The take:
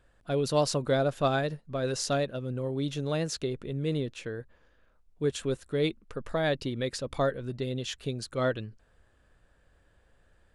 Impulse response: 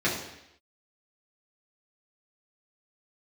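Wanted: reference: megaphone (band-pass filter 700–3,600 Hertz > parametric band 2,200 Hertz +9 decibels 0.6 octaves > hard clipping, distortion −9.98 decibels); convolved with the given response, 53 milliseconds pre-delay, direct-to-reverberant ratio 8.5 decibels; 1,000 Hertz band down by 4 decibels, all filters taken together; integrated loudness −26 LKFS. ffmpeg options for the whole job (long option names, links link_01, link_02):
-filter_complex "[0:a]equalizer=frequency=1000:width_type=o:gain=-4.5,asplit=2[link_01][link_02];[1:a]atrim=start_sample=2205,adelay=53[link_03];[link_02][link_03]afir=irnorm=-1:irlink=0,volume=-21.5dB[link_04];[link_01][link_04]amix=inputs=2:normalize=0,highpass=700,lowpass=3600,equalizer=frequency=2200:width_type=o:width=0.6:gain=9,asoftclip=type=hard:threshold=-30dB,volume=12dB"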